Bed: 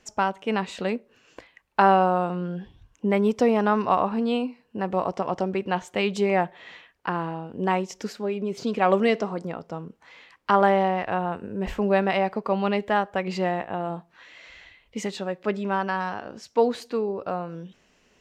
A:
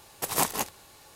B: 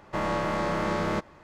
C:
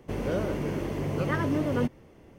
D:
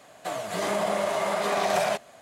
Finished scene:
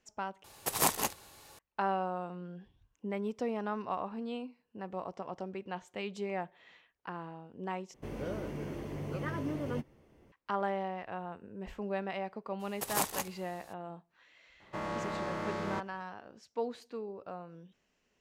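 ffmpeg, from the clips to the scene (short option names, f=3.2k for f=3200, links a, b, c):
-filter_complex "[1:a]asplit=2[a][b];[0:a]volume=-14.5dB[c];[3:a]asplit=2[d][e];[e]adelay=14,volume=-12dB[f];[d][f]amix=inputs=2:normalize=0[g];[2:a]highpass=54[h];[c]asplit=3[i][j][k];[i]atrim=end=0.444[l];[a]atrim=end=1.15,asetpts=PTS-STARTPTS,volume=-2.5dB[m];[j]atrim=start=1.586:end=7.944[n];[g]atrim=end=2.38,asetpts=PTS-STARTPTS,volume=-9.5dB[o];[k]atrim=start=10.316[p];[b]atrim=end=1.15,asetpts=PTS-STARTPTS,volume=-6.5dB,afade=t=in:d=0.02,afade=t=out:st=1.13:d=0.02,adelay=12590[q];[h]atrim=end=1.43,asetpts=PTS-STARTPTS,volume=-9dB,afade=t=in:d=0.004:c=hsin,afade=t=out:st=1.426:d=0.004:c=hsin,adelay=643860S[r];[l][m]acrossfade=d=0.004:c1=hsin:c2=hsin[s];[s][n]acrossfade=d=0.004:c1=hsin:c2=hsin[t];[t][o]acrossfade=d=0.004:c1=hsin:c2=hsin[u];[u][p]acrossfade=d=0.004:c1=hsin:c2=hsin[v];[v][q][r]amix=inputs=3:normalize=0"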